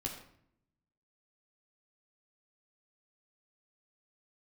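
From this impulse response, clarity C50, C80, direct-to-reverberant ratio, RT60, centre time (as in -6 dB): 6.5 dB, 9.0 dB, -0.5 dB, 0.65 s, 27 ms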